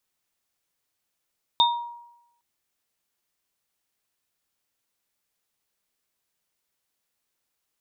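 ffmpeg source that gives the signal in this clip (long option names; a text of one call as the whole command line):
ffmpeg -f lavfi -i "aevalsrc='0.158*pow(10,-3*t/0.87)*sin(2*PI*949*t)+0.2*pow(10,-3*t/0.29)*sin(2*PI*3660*t)':duration=0.81:sample_rate=44100" out.wav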